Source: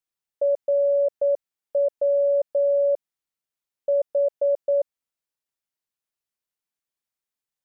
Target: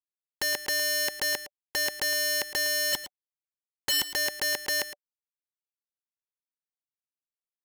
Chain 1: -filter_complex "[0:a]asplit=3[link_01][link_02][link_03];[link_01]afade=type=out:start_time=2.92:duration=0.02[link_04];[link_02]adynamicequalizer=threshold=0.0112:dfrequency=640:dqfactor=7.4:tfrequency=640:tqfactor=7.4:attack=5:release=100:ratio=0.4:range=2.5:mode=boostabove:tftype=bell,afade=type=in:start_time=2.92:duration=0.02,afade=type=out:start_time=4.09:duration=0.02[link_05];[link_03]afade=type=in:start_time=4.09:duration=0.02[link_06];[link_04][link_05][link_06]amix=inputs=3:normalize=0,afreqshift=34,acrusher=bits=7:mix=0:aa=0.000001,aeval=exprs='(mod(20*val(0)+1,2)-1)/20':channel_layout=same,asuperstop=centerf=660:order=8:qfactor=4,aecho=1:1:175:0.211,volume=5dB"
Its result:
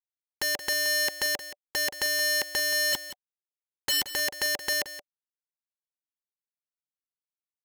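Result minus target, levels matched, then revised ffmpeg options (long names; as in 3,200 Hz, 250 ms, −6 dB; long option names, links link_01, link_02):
echo 63 ms late
-filter_complex "[0:a]asplit=3[link_01][link_02][link_03];[link_01]afade=type=out:start_time=2.92:duration=0.02[link_04];[link_02]adynamicequalizer=threshold=0.0112:dfrequency=640:dqfactor=7.4:tfrequency=640:tqfactor=7.4:attack=5:release=100:ratio=0.4:range=2.5:mode=boostabove:tftype=bell,afade=type=in:start_time=2.92:duration=0.02,afade=type=out:start_time=4.09:duration=0.02[link_05];[link_03]afade=type=in:start_time=4.09:duration=0.02[link_06];[link_04][link_05][link_06]amix=inputs=3:normalize=0,afreqshift=34,acrusher=bits=7:mix=0:aa=0.000001,aeval=exprs='(mod(20*val(0)+1,2)-1)/20':channel_layout=same,asuperstop=centerf=660:order=8:qfactor=4,aecho=1:1:112:0.211,volume=5dB"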